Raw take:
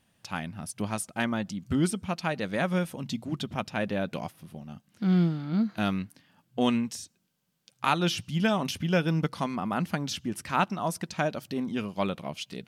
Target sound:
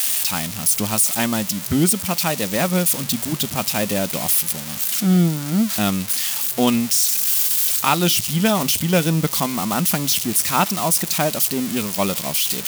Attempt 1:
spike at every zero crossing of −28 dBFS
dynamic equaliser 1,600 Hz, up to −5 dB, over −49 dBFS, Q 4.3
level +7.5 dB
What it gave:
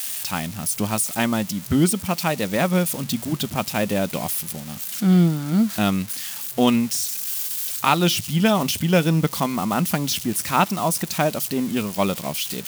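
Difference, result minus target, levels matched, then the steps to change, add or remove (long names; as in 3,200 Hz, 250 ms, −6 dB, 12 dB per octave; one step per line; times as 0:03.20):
spike at every zero crossing: distortion −8 dB
change: spike at every zero crossing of −19.5 dBFS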